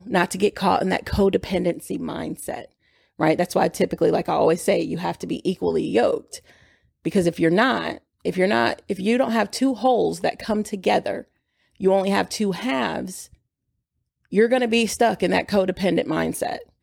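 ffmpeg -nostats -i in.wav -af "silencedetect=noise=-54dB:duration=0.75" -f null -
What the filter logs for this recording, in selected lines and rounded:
silence_start: 13.35
silence_end: 14.25 | silence_duration: 0.90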